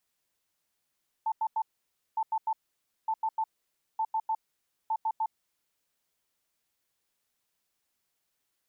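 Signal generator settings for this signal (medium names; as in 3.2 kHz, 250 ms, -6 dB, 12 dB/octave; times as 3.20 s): beep pattern sine 884 Hz, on 0.06 s, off 0.09 s, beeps 3, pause 0.55 s, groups 5, -25.5 dBFS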